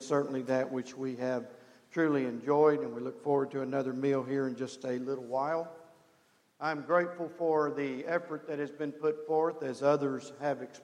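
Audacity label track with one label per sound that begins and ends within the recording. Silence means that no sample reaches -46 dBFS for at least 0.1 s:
1.940000	5.820000	sound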